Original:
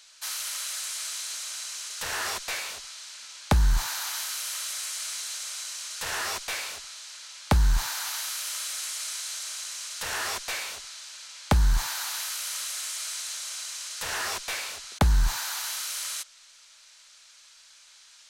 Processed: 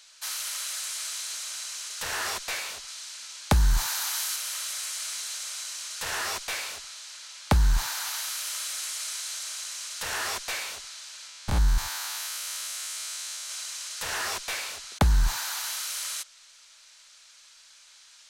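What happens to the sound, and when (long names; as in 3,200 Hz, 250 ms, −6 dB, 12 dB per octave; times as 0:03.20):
0:02.88–0:04.36: high-shelf EQ 5,200 Hz +4.5 dB
0:11.29–0:13.50: spectrum averaged block by block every 100 ms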